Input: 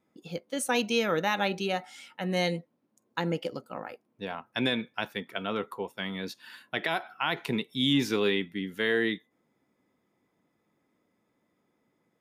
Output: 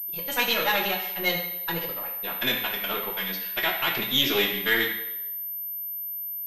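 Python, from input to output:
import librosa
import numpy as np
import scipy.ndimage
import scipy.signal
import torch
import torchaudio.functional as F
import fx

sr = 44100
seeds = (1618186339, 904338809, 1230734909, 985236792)

y = np.where(x < 0.0, 10.0 ** (-7.0 / 20.0) * x, x)
y = fx.stretch_vocoder(y, sr, factor=0.53)
y = fx.tilt_shelf(y, sr, db=-6.0, hz=1100.0)
y = fx.hum_notches(y, sr, base_hz=60, count=3)
y = fx.rev_fdn(y, sr, rt60_s=0.88, lf_ratio=0.75, hf_ratio=0.95, size_ms=49.0, drr_db=-1.0)
y = fx.pwm(y, sr, carrier_hz=13000.0)
y = y * librosa.db_to_amplitude(4.0)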